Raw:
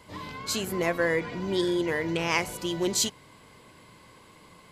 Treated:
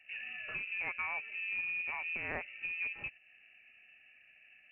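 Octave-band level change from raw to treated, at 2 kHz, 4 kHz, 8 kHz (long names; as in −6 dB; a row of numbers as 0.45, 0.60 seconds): −3.5 dB, −20.5 dB, below −40 dB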